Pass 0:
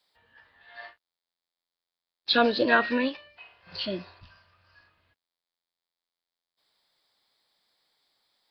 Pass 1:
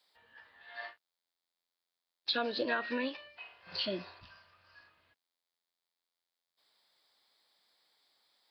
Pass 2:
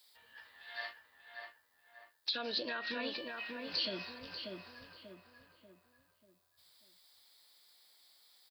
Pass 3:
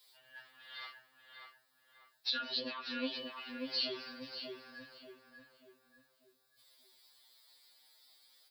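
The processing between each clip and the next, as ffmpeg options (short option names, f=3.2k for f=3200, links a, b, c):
-af "lowshelf=f=150:g=-11,acompressor=threshold=-31dB:ratio=5"
-filter_complex "[0:a]alimiter=level_in=7dB:limit=-24dB:level=0:latency=1:release=107,volume=-7dB,crystalizer=i=4:c=0,asplit=2[a][b];[b]adelay=589,lowpass=f=2k:p=1,volume=-3.5dB,asplit=2[c][d];[d]adelay=589,lowpass=f=2k:p=1,volume=0.43,asplit=2[e][f];[f]adelay=589,lowpass=f=2k:p=1,volume=0.43,asplit=2[g][h];[h]adelay=589,lowpass=f=2k:p=1,volume=0.43,asplit=2[i][j];[j]adelay=589,lowpass=f=2k:p=1,volume=0.43[k];[c][e][g][i][k]amix=inputs=5:normalize=0[l];[a][l]amix=inputs=2:normalize=0,volume=-2dB"
-af "afftfilt=real='re*2.45*eq(mod(b,6),0)':imag='im*2.45*eq(mod(b,6),0)':win_size=2048:overlap=0.75,volume=2.5dB"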